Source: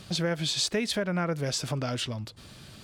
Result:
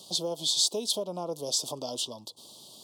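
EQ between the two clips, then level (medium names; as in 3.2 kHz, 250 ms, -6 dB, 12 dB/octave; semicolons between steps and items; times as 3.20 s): high-pass 370 Hz 12 dB/octave; elliptic band-stop 1–3.3 kHz, stop band 70 dB; treble shelf 4.8 kHz +7.5 dB; 0.0 dB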